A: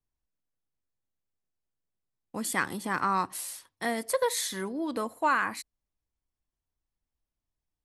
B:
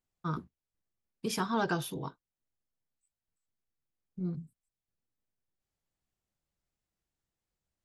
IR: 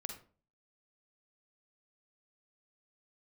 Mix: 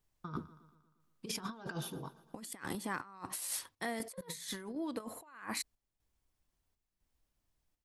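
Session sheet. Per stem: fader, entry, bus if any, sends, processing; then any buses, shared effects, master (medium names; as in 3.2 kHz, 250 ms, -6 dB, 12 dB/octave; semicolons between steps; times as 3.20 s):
+1.0 dB, 0.00 s, no send, no echo send, compression 2:1, threshold -35 dBFS, peak gain reduction 8 dB; square tremolo 1 Hz, depth 65%, duty 75%
1.59 s -4.5 dB -> 2.04 s -12 dB, 0.00 s, no send, echo send -22.5 dB, none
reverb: none
echo: feedback delay 117 ms, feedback 57%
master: compressor with a negative ratio -41 dBFS, ratio -0.5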